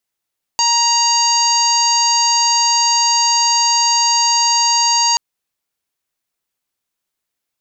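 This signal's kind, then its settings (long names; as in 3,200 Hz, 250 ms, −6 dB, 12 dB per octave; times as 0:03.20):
steady harmonic partials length 4.58 s, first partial 939 Hz, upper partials −16/−8/−18/0/−16.5/−0.5/−15 dB, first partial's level −16 dB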